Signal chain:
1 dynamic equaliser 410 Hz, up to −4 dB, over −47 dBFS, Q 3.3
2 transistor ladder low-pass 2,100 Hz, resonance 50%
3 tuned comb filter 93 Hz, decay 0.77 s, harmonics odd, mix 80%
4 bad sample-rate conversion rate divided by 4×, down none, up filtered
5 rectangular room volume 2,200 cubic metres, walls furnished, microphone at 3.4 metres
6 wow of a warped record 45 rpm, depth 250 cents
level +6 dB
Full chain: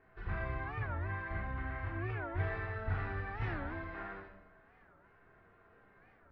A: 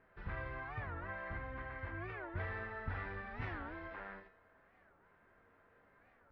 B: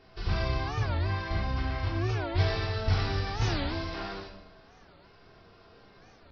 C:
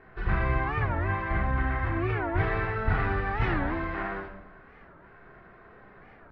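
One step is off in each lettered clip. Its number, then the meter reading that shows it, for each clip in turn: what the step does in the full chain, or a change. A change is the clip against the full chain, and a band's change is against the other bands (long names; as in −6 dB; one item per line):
5, change in crest factor +2.0 dB
2, 4 kHz band +15.0 dB
3, 125 Hz band −3.0 dB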